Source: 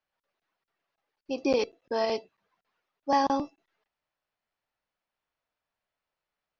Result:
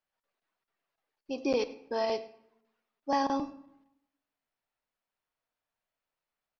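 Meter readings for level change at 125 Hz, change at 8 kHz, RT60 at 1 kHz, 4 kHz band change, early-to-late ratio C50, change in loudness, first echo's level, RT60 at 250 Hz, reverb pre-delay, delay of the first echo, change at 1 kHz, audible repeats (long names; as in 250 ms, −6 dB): −3.5 dB, can't be measured, 0.80 s, −3.5 dB, 15.0 dB, −3.5 dB, −21.0 dB, 0.95 s, 3 ms, 102 ms, −4.5 dB, 1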